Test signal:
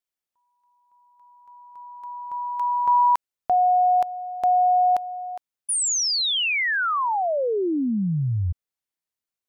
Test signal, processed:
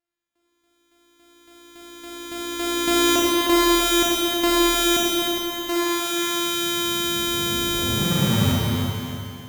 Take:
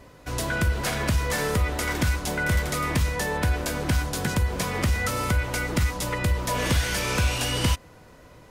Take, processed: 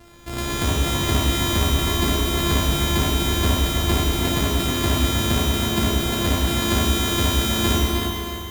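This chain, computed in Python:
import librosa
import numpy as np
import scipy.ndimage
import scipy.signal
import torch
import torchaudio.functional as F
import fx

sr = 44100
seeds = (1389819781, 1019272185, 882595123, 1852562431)

y = np.r_[np.sort(x[:len(x) // 128 * 128].reshape(-1, 128), axis=1).ravel(), x[len(x) // 128 * 128:]]
y = fx.echo_thinned(y, sr, ms=309, feedback_pct=38, hz=190.0, wet_db=-6.5)
y = fx.rev_schroeder(y, sr, rt60_s=2.5, comb_ms=28, drr_db=-4.5)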